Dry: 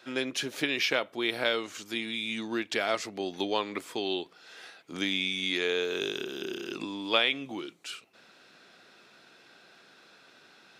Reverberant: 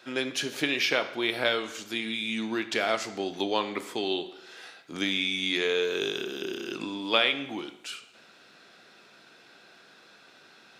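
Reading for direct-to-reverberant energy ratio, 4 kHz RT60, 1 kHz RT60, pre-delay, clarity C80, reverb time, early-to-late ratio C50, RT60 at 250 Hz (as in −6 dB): 9.0 dB, 0.80 s, 0.85 s, 10 ms, 14.5 dB, 0.85 s, 12.5 dB, 0.85 s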